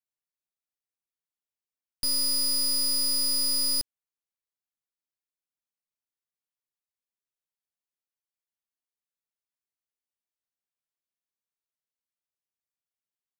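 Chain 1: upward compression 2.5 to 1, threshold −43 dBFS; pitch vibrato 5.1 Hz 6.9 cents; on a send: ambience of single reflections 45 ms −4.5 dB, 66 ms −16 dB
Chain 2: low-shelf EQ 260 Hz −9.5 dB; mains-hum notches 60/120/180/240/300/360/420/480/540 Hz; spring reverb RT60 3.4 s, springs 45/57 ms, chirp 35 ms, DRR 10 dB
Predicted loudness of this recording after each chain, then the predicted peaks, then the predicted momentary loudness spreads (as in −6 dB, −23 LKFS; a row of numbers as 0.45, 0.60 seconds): −22.5, −23.5 LKFS; −18.0, −22.0 dBFS; 5, 5 LU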